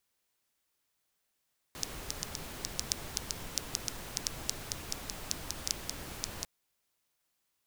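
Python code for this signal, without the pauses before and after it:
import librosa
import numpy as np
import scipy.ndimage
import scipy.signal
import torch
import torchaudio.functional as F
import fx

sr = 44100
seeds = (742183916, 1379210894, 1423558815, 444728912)

y = fx.rain(sr, seeds[0], length_s=4.7, drops_per_s=5.4, hz=5600.0, bed_db=-1.0)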